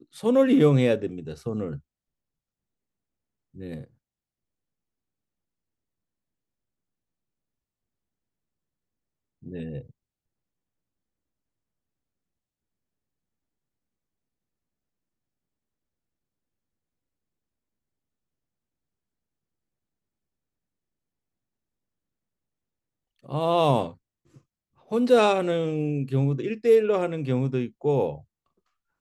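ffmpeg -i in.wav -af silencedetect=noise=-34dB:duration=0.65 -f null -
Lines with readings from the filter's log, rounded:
silence_start: 1.77
silence_end: 3.59 | silence_duration: 1.83
silence_start: 3.82
silence_end: 9.46 | silence_duration: 5.64
silence_start: 9.80
silence_end: 23.26 | silence_duration: 13.46
silence_start: 23.91
silence_end: 24.91 | silence_duration: 1.01
silence_start: 28.16
silence_end: 29.00 | silence_duration: 0.85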